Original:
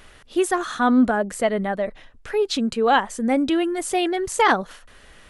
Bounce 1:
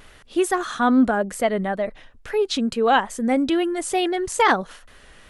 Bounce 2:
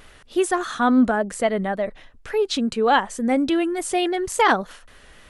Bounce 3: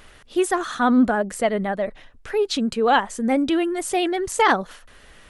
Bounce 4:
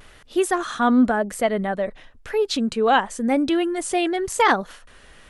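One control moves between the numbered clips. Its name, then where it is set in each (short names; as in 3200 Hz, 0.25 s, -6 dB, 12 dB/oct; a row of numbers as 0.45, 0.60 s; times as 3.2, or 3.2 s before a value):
vibrato, rate: 2.3, 3.5, 14, 0.95 Hz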